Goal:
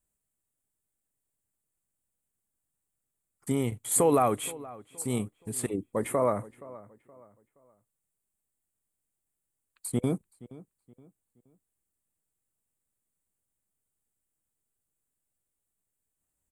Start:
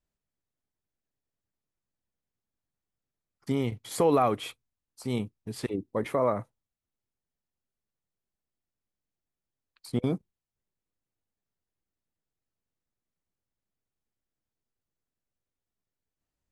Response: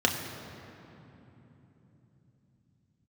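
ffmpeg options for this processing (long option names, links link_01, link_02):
-filter_complex "[0:a]highshelf=frequency=6600:width_type=q:width=3:gain=9,asplit=2[link_01][link_02];[link_02]adelay=472,lowpass=frequency=3000:poles=1,volume=-19dB,asplit=2[link_03][link_04];[link_04]adelay=472,lowpass=frequency=3000:poles=1,volume=0.35,asplit=2[link_05][link_06];[link_06]adelay=472,lowpass=frequency=3000:poles=1,volume=0.35[link_07];[link_01][link_03][link_05][link_07]amix=inputs=4:normalize=0"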